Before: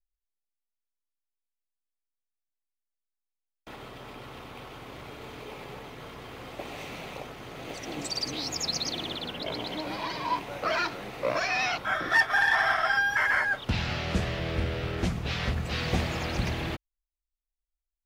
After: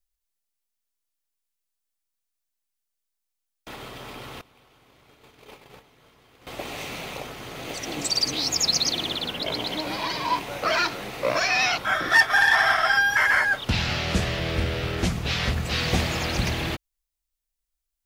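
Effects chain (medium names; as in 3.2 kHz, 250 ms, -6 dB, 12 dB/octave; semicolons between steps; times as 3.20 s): 4.41–6.47 s: gate -39 dBFS, range -19 dB; treble shelf 3.3 kHz +7.5 dB; trim +3.5 dB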